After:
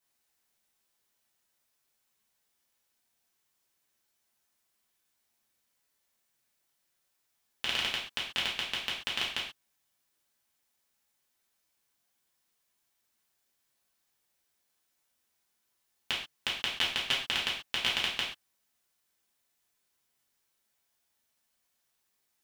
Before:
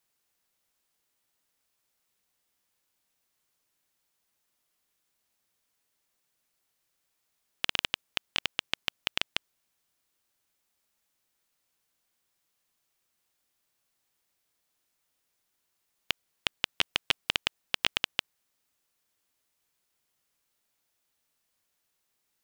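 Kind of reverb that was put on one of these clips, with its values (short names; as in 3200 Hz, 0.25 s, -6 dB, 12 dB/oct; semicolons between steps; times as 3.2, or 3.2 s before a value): non-linear reverb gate 0.16 s falling, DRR -5.5 dB; gain -6.5 dB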